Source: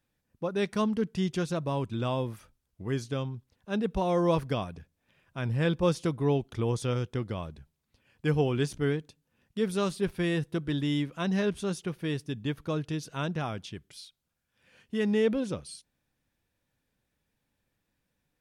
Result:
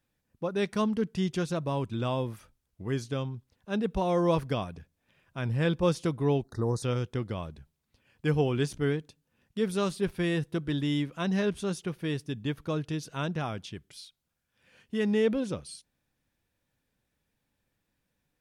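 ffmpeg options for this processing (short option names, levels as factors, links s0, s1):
-filter_complex "[0:a]asettb=1/sr,asplit=3[s0][s1][s2];[s0]atrim=end=6.434[s3];[s1]atrim=start=6.43:end=6.83,asetpts=PTS-STARTPTS,afade=t=in:d=0.004:c=qsin,afade=t=out:st=0.396:d=0.004:c=qsin,asuperstop=centerf=2700:order=20:qfactor=1.5[s4];[s2]atrim=start=6.826[s5];[s3][s4]acrossfade=d=0.004:c1=hsin:c2=qsin[s6];[s6][s5]acrossfade=d=0.004:c1=qsin:c2=hsin"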